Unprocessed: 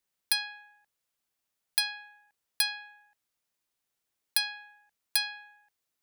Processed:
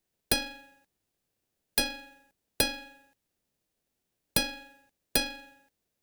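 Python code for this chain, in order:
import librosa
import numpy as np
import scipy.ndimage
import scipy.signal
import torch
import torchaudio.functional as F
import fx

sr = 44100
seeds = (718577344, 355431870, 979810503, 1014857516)

p1 = fx.envelope_flatten(x, sr, power=0.6)
p2 = fx.peak_eq(p1, sr, hz=1400.0, db=-9.0, octaves=0.24)
p3 = fx.sample_hold(p2, sr, seeds[0], rate_hz=1100.0, jitter_pct=0)
y = p2 + (p3 * 10.0 ** (-4.0 / 20.0))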